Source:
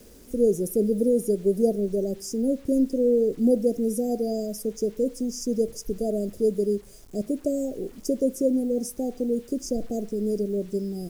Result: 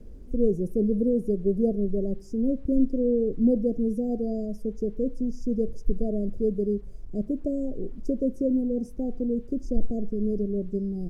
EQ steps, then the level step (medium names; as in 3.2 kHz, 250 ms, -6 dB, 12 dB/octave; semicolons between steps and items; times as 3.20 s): tilt EQ -4.5 dB/octave; -9.0 dB